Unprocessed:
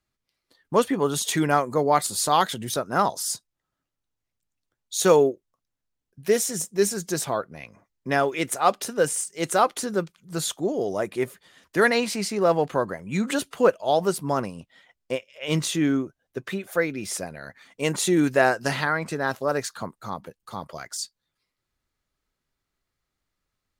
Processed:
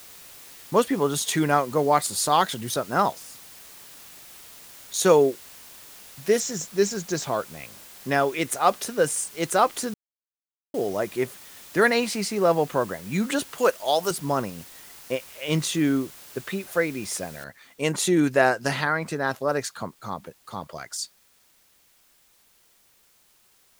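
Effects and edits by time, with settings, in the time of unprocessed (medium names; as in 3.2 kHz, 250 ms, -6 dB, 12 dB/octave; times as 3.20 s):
3.12–4.94 s: compression 20:1, threshold -41 dBFS
6.40–7.59 s: steep low-pass 7.6 kHz 72 dB/octave
9.94–10.74 s: mute
13.58–14.11 s: RIAA curve recording
17.44 s: noise floor step -46 dB -61 dB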